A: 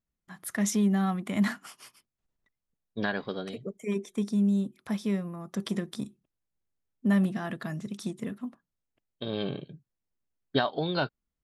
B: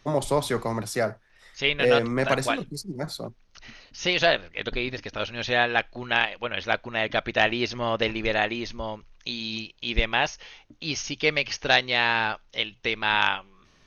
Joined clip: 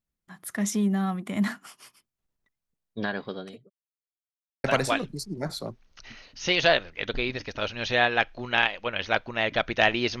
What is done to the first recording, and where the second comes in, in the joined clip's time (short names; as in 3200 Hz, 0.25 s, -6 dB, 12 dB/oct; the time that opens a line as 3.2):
A
3.2–3.7 fade out equal-power
3.7–4.64 mute
4.64 switch to B from 2.22 s